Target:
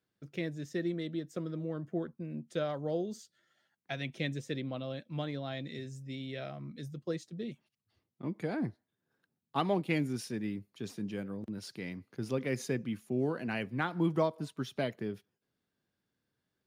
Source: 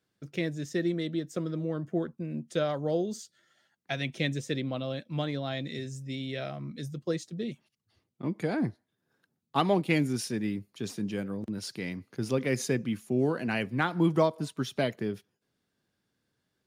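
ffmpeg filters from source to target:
-af "equalizer=f=7800:t=o:w=1.6:g=-4,volume=0.562"

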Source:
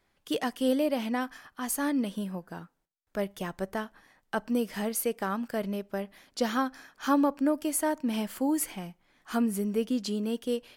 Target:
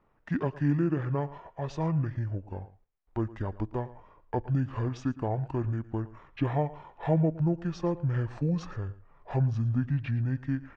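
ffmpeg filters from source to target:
-filter_complex "[0:a]asubboost=boost=3.5:cutoff=150,asetrate=24750,aresample=44100,atempo=1.7818,aecho=1:1:112:0.119,asplit=2[s0][s1];[s1]acompressor=threshold=0.00891:ratio=6,volume=0.75[s2];[s0][s2]amix=inputs=2:normalize=0,lowpass=1700"

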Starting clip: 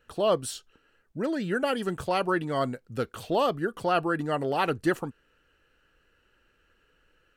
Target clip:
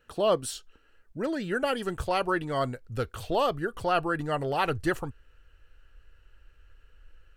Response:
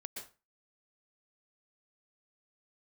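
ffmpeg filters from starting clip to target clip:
-af "asubboost=boost=11.5:cutoff=66"

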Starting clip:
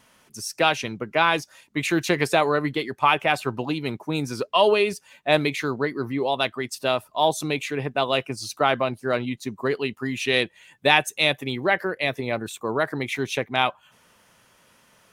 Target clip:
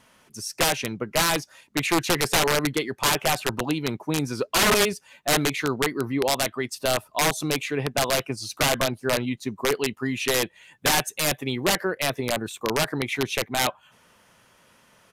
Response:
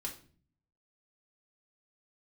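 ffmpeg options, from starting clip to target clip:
-af "highshelf=f=3500:g=-2.5,aeval=exprs='(mod(5.62*val(0)+1,2)-1)/5.62':c=same,aresample=32000,aresample=44100,volume=1.12"

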